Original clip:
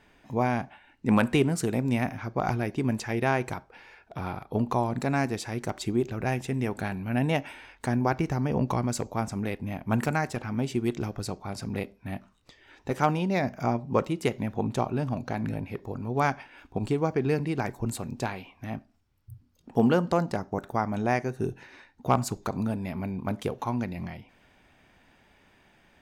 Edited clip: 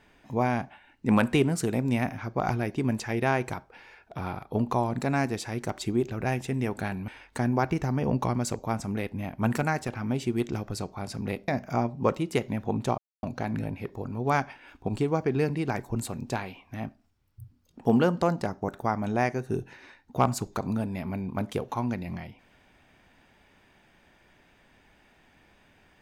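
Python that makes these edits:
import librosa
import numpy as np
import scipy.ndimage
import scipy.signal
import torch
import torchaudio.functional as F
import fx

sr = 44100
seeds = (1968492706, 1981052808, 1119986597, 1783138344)

y = fx.edit(x, sr, fx.cut(start_s=7.08, length_s=0.48),
    fx.cut(start_s=11.96, length_s=1.42),
    fx.silence(start_s=14.88, length_s=0.25), tone=tone)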